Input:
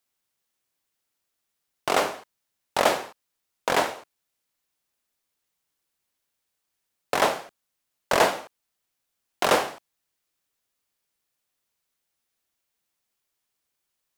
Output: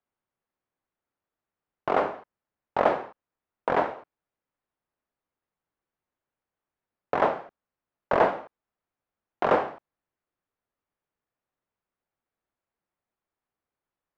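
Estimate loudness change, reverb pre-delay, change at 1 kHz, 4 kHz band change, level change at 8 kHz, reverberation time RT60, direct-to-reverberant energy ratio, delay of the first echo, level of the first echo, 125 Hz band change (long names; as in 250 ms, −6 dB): −2.0 dB, no reverb audible, −1.0 dB, −16.0 dB, below −25 dB, no reverb audible, no reverb audible, no echo audible, no echo audible, 0.0 dB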